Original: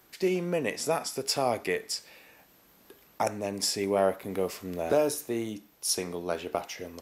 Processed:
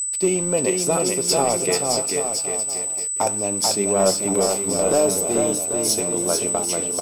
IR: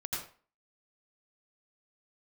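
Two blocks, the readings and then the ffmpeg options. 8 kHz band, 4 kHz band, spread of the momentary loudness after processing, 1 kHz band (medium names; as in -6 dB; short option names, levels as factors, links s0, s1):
+18.0 dB, +8.5 dB, 4 LU, +7.5 dB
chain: -filter_complex "[0:a]asplit=2[s0][s1];[s1]aeval=exprs='0.224*sin(PI/2*1.78*val(0)/0.224)':c=same,volume=0.531[s2];[s0][s2]amix=inputs=2:normalize=0,aecho=1:1:440|792|1074|1299|1479:0.631|0.398|0.251|0.158|0.1,aeval=exprs='sgn(val(0))*max(abs(val(0))-0.00944,0)':c=same,aeval=exprs='val(0)+0.0708*sin(2*PI*8000*n/s)':c=same,equalizer=f=1800:t=o:w=0.52:g=-9.5,flanger=delay=4.6:depth=3.2:regen=78:speed=0.77:shape=sinusoidal,volume=1.68"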